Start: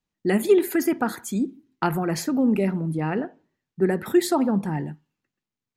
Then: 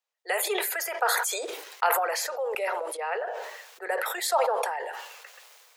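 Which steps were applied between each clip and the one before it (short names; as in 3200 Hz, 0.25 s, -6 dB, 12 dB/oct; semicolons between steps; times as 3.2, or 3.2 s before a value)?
steep high-pass 470 Hz 72 dB/oct; sustainer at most 28 dB/s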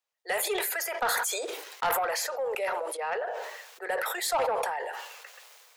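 soft clip -21 dBFS, distortion -14 dB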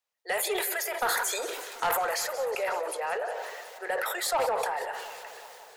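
warbling echo 0.182 s, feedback 74%, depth 120 cents, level -14.5 dB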